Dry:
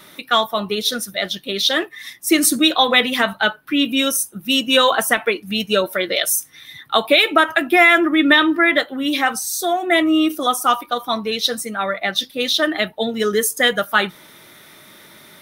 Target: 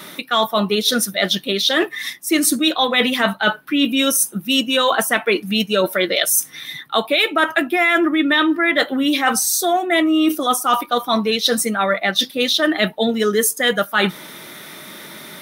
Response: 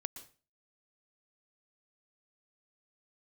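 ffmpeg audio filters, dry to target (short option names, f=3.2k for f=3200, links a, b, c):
-af "lowshelf=f=130:t=q:w=1.5:g=-6.5,areverse,acompressor=threshold=-22dB:ratio=6,areverse,volume=8dB"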